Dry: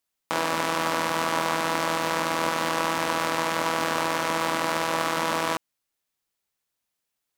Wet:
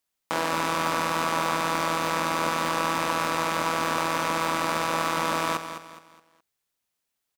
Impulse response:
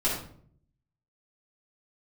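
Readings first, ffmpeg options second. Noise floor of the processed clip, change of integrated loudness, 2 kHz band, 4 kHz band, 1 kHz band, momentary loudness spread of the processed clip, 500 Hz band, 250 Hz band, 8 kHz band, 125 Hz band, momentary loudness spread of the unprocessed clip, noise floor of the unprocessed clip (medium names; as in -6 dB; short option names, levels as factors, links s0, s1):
-82 dBFS, -0.5 dB, -1.0 dB, -1.5 dB, +0.5 dB, 2 LU, -1.5 dB, -0.5 dB, -1.0 dB, +1.0 dB, 1 LU, -82 dBFS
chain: -filter_complex "[0:a]asoftclip=type=tanh:threshold=0.335,asplit=2[s0][s1];[s1]aecho=0:1:209|418|627|836:0.316|0.114|0.041|0.0148[s2];[s0][s2]amix=inputs=2:normalize=0"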